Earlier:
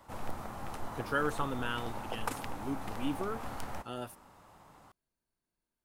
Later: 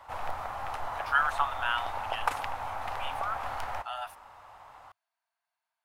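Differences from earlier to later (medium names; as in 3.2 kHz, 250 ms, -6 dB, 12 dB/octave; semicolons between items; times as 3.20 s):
speech: add brick-wall FIR high-pass 620 Hz; master: add FFT filter 100 Hz 0 dB, 180 Hz -13 dB, 360 Hz -7 dB, 730 Hz +9 dB, 2.7 kHz +7 dB, 8.3 kHz -3 dB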